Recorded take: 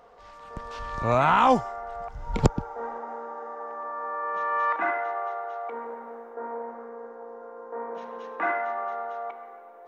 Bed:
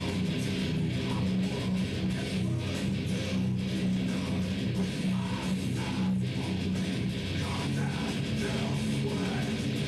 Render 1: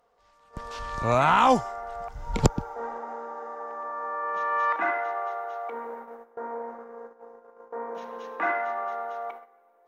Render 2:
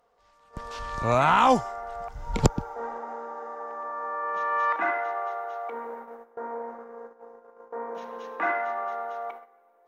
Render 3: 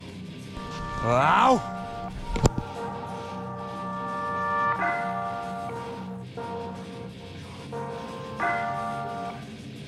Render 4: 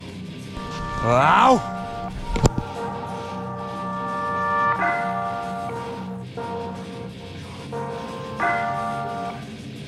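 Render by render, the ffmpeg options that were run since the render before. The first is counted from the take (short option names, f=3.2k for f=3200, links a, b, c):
-af "aemphasis=mode=production:type=cd,agate=range=-14dB:threshold=-40dB:ratio=16:detection=peak"
-af anull
-filter_complex "[1:a]volume=-9dB[a];[0:a][a]amix=inputs=2:normalize=0"
-af "volume=4.5dB,alimiter=limit=-3dB:level=0:latency=1"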